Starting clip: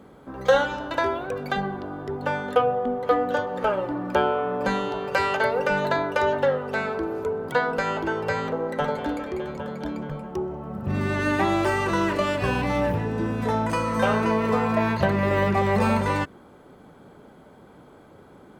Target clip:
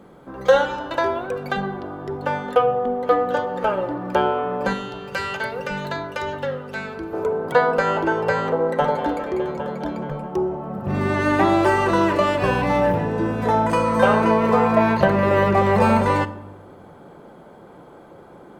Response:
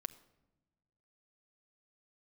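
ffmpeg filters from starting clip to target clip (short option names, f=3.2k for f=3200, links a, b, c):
-filter_complex "[0:a]asetnsamples=n=441:p=0,asendcmd='4.73 equalizer g -7.5;7.13 equalizer g 6.5',equalizer=f=670:w=0.55:g=2[a];[1:a]atrim=start_sample=2205[b];[a][b]afir=irnorm=-1:irlink=0,volume=3.5dB"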